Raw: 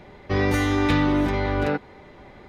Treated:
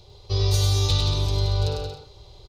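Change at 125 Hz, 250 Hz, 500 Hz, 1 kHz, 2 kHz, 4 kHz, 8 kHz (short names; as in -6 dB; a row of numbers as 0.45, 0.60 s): +5.5, -16.5, -5.5, -8.5, -15.0, +9.0, +10.0 dB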